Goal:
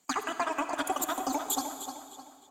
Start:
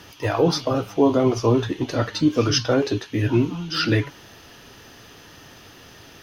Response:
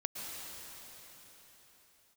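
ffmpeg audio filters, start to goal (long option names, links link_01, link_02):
-filter_complex "[0:a]equalizer=frequency=2900:width=4.2:gain=11.5,acompressor=threshold=-30dB:ratio=10,agate=range=-30dB:threshold=-32dB:ratio=16:detection=peak,asplit=2[link_01][link_02];[link_02]adelay=758,lowpass=frequency=2900:poles=1,volume=-8dB,asplit=2[link_03][link_04];[link_04]adelay=758,lowpass=frequency=2900:poles=1,volume=0.41,asplit=2[link_05][link_06];[link_06]adelay=758,lowpass=frequency=2900:poles=1,volume=0.41,asplit=2[link_07][link_08];[link_08]adelay=758,lowpass=frequency=2900:poles=1,volume=0.41,asplit=2[link_09][link_10];[link_10]adelay=758,lowpass=frequency=2900:poles=1,volume=0.41[link_11];[link_01][link_03][link_05][link_07][link_09][link_11]amix=inputs=6:normalize=0,asplit=2[link_12][link_13];[1:a]atrim=start_sample=2205[link_14];[link_13][link_14]afir=irnorm=-1:irlink=0,volume=-5dB[link_15];[link_12][link_15]amix=inputs=2:normalize=0,asetrate=109368,aresample=44100"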